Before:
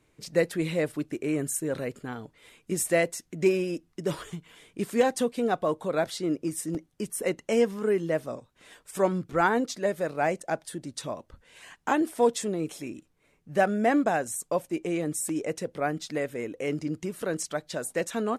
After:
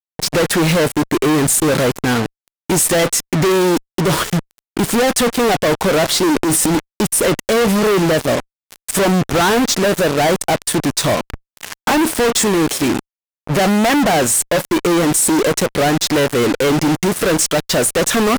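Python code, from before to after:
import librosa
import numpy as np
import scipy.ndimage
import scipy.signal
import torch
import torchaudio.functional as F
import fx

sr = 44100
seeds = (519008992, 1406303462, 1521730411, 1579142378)

y = fx.fuzz(x, sr, gain_db=51.0, gate_db=-42.0)
y = fx.transient(y, sr, attack_db=-4, sustain_db=9, at=(6.32, 6.72))
y = y * 10.0 ** (1.0 / 20.0)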